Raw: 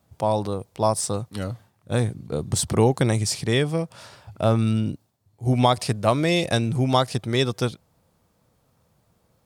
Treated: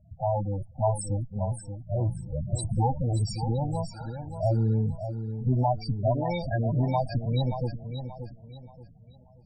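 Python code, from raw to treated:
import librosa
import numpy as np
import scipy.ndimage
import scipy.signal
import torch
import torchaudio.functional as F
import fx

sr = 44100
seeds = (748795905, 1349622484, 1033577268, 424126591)

y = fx.lower_of_two(x, sr, delay_ms=1.3)
y = fx.power_curve(y, sr, exponent=0.7)
y = fx.spec_topn(y, sr, count=8)
y = fx.echo_feedback(y, sr, ms=580, feedback_pct=32, wet_db=-9.0)
y = y * librosa.db_to_amplitude(-6.0)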